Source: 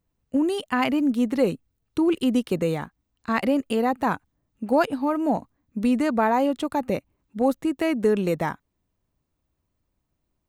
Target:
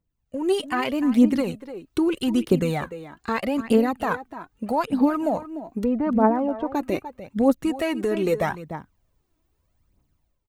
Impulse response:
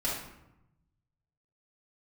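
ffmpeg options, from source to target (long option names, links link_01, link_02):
-filter_complex "[0:a]asplit=3[link_01][link_02][link_03];[link_01]afade=type=out:start_time=5.83:duration=0.02[link_04];[link_02]lowpass=1000,afade=type=in:start_time=5.83:duration=0.02,afade=type=out:start_time=6.74:duration=0.02[link_05];[link_03]afade=type=in:start_time=6.74:duration=0.02[link_06];[link_04][link_05][link_06]amix=inputs=3:normalize=0,alimiter=limit=-18dB:level=0:latency=1:release=266,dynaudnorm=framelen=170:gausssize=5:maxgain=12.5dB,asplit=2[link_07][link_08];[link_08]adelay=297.4,volume=-13dB,highshelf=frequency=4000:gain=-6.69[link_09];[link_07][link_09]amix=inputs=2:normalize=0,aphaser=in_gain=1:out_gain=1:delay=3.2:decay=0.56:speed=0.8:type=triangular,volume=-8.5dB"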